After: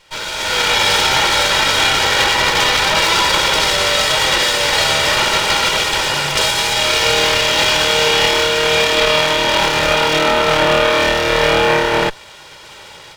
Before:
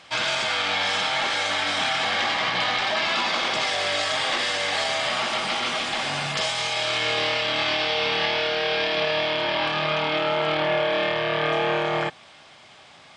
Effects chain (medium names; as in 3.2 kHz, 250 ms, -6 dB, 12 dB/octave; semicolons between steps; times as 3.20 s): comb filter that takes the minimum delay 2.1 ms; level rider gain up to 14 dB